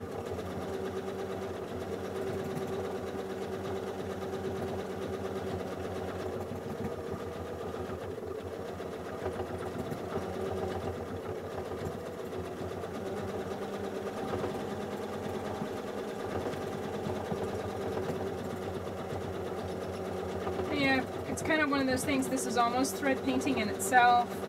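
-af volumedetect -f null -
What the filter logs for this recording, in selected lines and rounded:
mean_volume: -34.1 dB
max_volume: -10.2 dB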